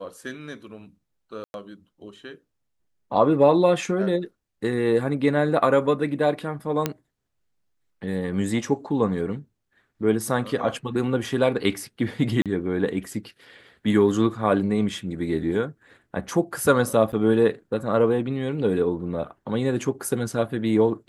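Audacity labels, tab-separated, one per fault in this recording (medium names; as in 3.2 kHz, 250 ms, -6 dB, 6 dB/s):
1.440000	1.540000	dropout 101 ms
6.860000	6.860000	pop -8 dBFS
12.420000	12.460000	dropout 37 ms
17.120000	17.130000	dropout 7.4 ms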